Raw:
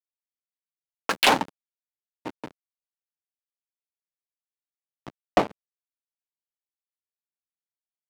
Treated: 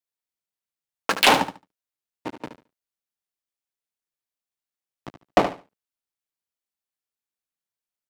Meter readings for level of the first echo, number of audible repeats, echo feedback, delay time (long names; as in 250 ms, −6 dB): −10.0 dB, 2, 20%, 73 ms